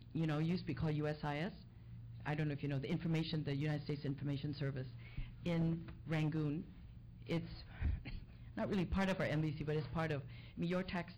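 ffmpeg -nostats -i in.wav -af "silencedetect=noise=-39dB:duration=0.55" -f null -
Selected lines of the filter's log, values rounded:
silence_start: 1.48
silence_end: 2.26 | silence_duration: 0.77
silence_start: 6.60
silence_end: 7.29 | silence_duration: 0.69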